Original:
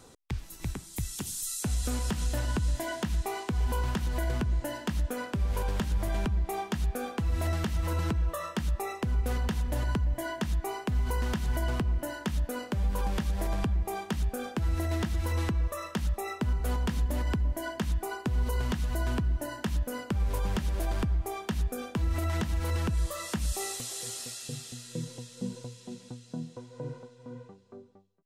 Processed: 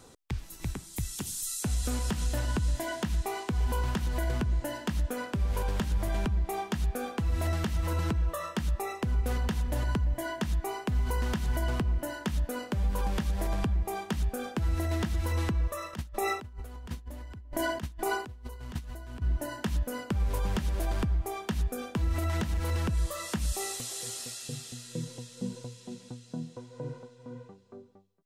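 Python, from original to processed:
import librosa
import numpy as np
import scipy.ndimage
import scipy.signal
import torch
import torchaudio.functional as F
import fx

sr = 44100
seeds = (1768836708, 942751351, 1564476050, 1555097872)

y = fx.over_compress(x, sr, threshold_db=-35.0, ratio=-0.5, at=(15.93, 19.22))
y = fx.clip_hard(y, sr, threshold_db=-24.0, at=(22.4, 22.95))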